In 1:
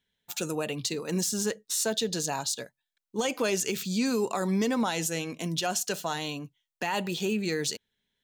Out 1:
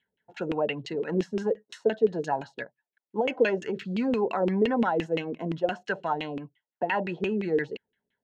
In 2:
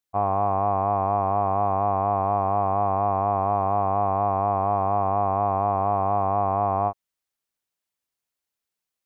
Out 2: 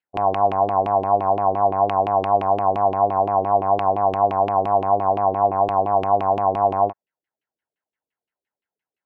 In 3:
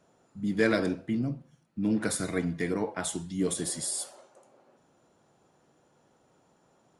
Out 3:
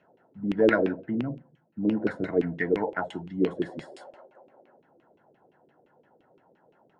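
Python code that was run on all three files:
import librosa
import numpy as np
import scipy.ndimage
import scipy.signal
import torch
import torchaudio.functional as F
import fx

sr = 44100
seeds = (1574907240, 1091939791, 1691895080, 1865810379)

y = fx.notch_comb(x, sr, f0_hz=1200.0)
y = fx.filter_lfo_lowpass(y, sr, shape='saw_down', hz=5.8, low_hz=320.0, high_hz=2800.0, q=3.6)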